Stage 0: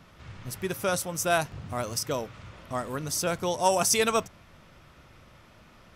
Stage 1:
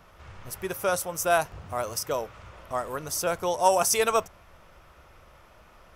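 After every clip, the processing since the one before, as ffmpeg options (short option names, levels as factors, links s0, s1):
-af "equalizer=f=125:t=o:w=1:g=-10,equalizer=f=250:t=o:w=1:g=-10,equalizer=f=2000:t=o:w=1:g=-4,equalizer=f=4000:t=o:w=1:g=-7,equalizer=f=8000:t=o:w=1:g=-4,volume=1.68"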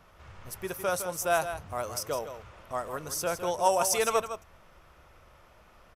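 -af "aecho=1:1:159:0.316,aresample=32000,aresample=44100,volume=0.668"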